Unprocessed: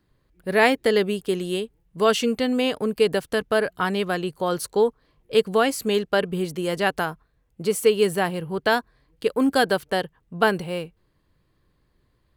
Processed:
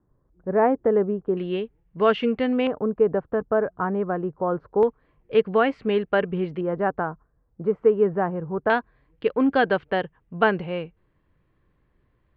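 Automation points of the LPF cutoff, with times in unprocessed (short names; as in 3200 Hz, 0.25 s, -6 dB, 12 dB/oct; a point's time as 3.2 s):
LPF 24 dB/oct
1200 Hz
from 1.37 s 2600 Hz
from 2.67 s 1300 Hz
from 4.83 s 2500 Hz
from 6.61 s 1400 Hz
from 8.7 s 2800 Hz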